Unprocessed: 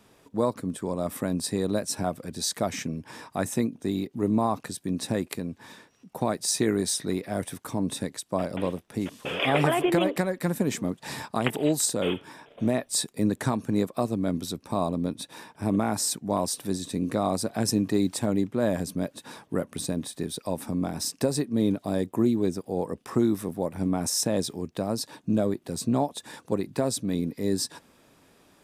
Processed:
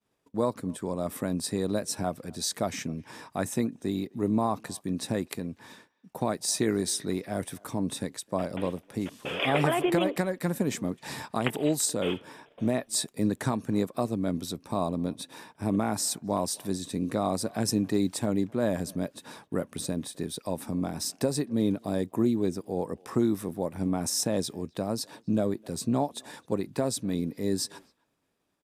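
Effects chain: expander -47 dBFS; speakerphone echo 0.26 s, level -26 dB; gain -2 dB

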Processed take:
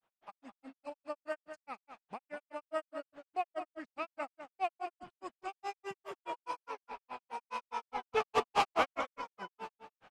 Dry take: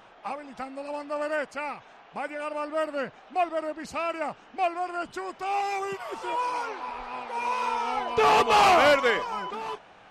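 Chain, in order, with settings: gate with hold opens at -42 dBFS; grains 0.112 s, grains 4.8/s, spray 34 ms, pitch spread up and down by 0 st; outdoor echo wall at 35 m, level -9 dB; gain -6.5 dB

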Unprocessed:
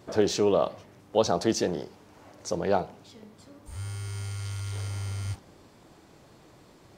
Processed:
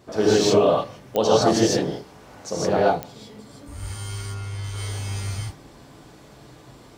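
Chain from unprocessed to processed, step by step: 4.18–4.64 high shelf 3200 Hz -11.5 dB; non-linear reverb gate 0.18 s rising, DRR -6.5 dB; pops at 1.16/3.03, -11 dBFS

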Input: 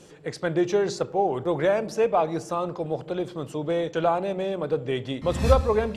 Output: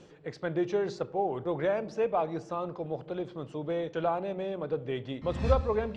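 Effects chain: reverse; upward compressor, threshold -34 dBFS; reverse; air absorption 130 m; gain -6 dB

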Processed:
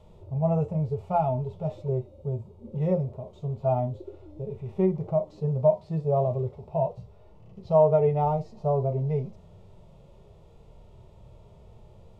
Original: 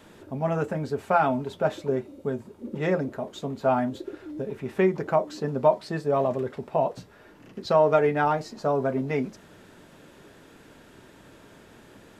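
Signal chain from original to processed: RIAA curve playback; harmonic-percussive split percussive -14 dB; fixed phaser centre 670 Hz, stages 4

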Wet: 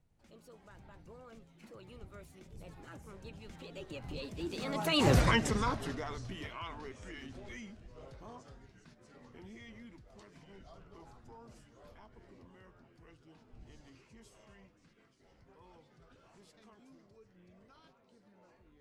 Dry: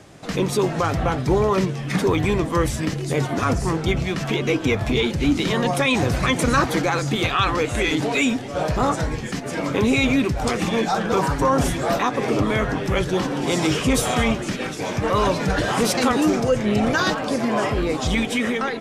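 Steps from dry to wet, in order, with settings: wind noise 88 Hz -28 dBFS; Doppler pass-by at 5.16, 55 m/s, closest 6.4 m; gain -3 dB

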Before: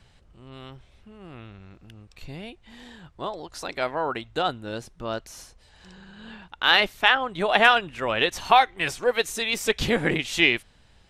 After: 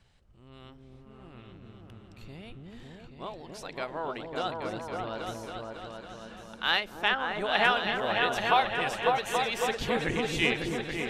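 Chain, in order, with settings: repeats that get brighter 0.276 s, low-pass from 400 Hz, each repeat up 2 oct, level 0 dB; ending taper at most 220 dB/s; gain -8 dB

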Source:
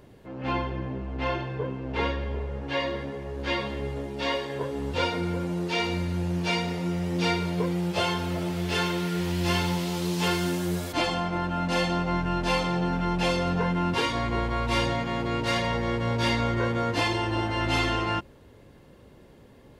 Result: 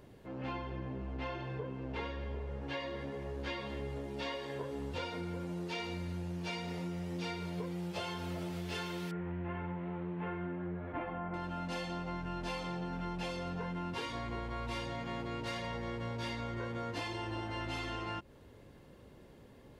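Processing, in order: 9.11–11.34 inverse Chebyshev low-pass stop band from 5000 Hz, stop band 50 dB; compressor, threshold -32 dBFS, peak gain reduction 11 dB; gain -4.5 dB

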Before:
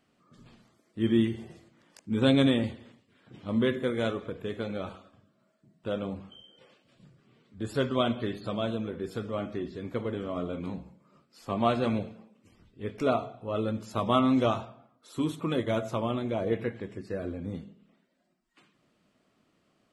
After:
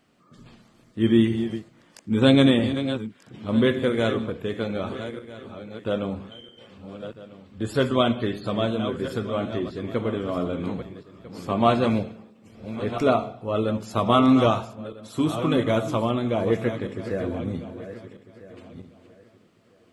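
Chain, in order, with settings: regenerating reverse delay 0.649 s, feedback 42%, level -10.5 dB; gain +6 dB

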